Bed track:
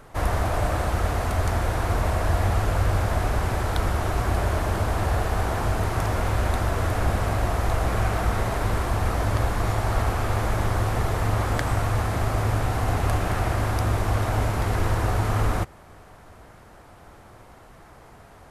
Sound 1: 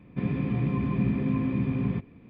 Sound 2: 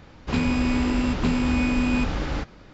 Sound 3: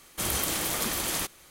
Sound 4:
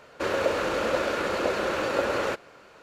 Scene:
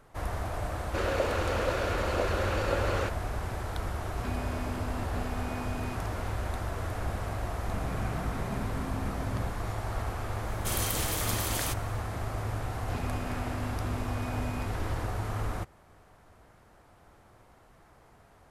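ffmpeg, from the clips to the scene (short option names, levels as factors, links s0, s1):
-filter_complex "[2:a]asplit=2[s0][s1];[0:a]volume=0.316[s2];[s1]acompressor=threshold=0.0398:ratio=6:attack=3.2:release=140:knee=1:detection=peak[s3];[4:a]atrim=end=2.82,asetpts=PTS-STARTPTS,volume=0.596,afade=t=in:d=0.004:c=hsin,afade=t=out:st=2.816:d=0.004:c=hsin,adelay=740[s4];[s0]atrim=end=2.73,asetpts=PTS-STARTPTS,volume=0.133,afade=t=in:d=0.004:c=hsin,afade=t=out:st=2.726:d=0.004:c=hsin,adelay=3910[s5];[1:a]atrim=end=2.29,asetpts=PTS-STARTPTS,volume=0.251,afade=t=in:d=0.004:c=hsin,afade=t=out:st=2.286:d=0.004:c=hsin,adelay=7510[s6];[3:a]atrim=end=1.5,asetpts=PTS-STARTPTS,volume=0.668,afade=t=in:d=0.004:c=hsin,afade=t=out:st=1.496:d=0.004:c=hsin,adelay=10470[s7];[s3]atrim=end=2.73,asetpts=PTS-STARTPTS,volume=0.376,afade=t=in:d=0.004:c=hsin,afade=t=out:st=2.726:d=0.004:c=hsin,adelay=12620[s8];[s2][s4][s5][s6][s7][s8]amix=inputs=6:normalize=0"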